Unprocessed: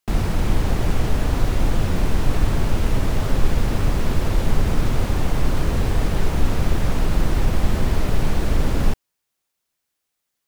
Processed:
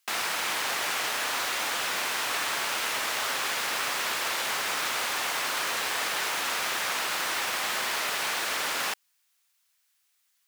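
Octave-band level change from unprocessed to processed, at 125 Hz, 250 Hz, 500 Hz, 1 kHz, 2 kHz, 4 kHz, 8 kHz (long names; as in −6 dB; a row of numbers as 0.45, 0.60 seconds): −35.0, −21.0, −9.5, +1.0, +6.0, +7.0, +7.0 decibels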